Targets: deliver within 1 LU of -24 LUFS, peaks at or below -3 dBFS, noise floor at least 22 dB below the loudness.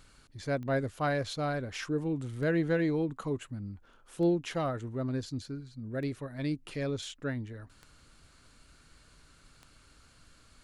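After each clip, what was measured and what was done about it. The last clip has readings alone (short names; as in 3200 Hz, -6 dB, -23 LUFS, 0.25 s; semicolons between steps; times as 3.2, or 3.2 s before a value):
clicks 6; loudness -33.5 LUFS; peak -19.0 dBFS; loudness target -24.0 LUFS
-> de-click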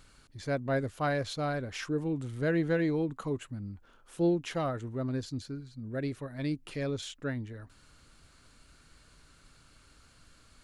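clicks 0; loudness -33.5 LUFS; peak -19.0 dBFS; loudness target -24.0 LUFS
-> gain +9.5 dB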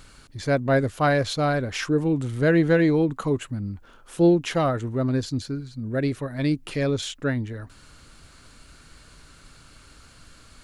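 loudness -24.0 LUFS; peak -9.5 dBFS; noise floor -51 dBFS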